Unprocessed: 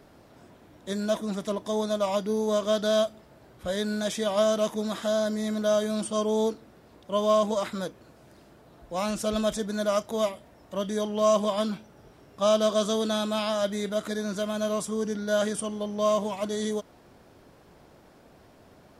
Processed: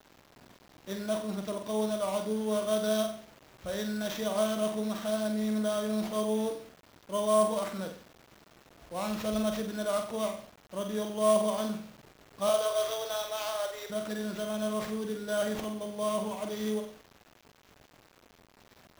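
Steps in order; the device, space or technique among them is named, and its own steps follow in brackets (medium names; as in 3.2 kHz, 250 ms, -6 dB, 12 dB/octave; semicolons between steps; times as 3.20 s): 12.49–13.90 s: steep high-pass 440 Hz 36 dB/octave; flutter echo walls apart 8 m, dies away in 0.47 s; early 8-bit sampler (sample-rate reducer 9.4 kHz, jitter 0%; bit crusher 8-bit); trim -6 dB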